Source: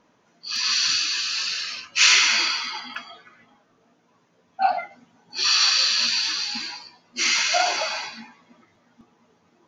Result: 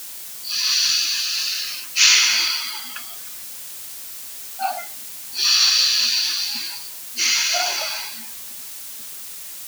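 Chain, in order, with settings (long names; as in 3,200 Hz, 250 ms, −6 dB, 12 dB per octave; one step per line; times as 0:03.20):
background noise white −40 dBFS
high-shelf EQ 2,800 Hz +11.5 dB
level −5 dB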